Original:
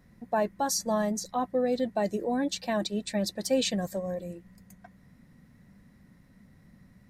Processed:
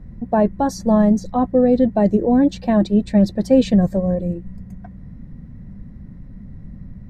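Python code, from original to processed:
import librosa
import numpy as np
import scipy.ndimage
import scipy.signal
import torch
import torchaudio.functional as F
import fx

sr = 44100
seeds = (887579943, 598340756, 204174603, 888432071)

y = fx.tilt_eq(x, sr, slope=-4.5)
y = F.gain(torch.from_numpy(y), 6.5).numpy()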